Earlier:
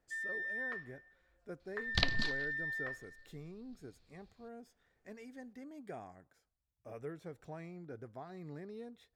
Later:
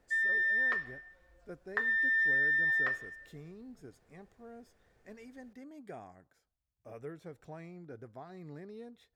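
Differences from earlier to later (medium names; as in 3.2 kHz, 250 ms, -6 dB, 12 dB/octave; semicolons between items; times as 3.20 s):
first sound +10.5 dB; second sound: muted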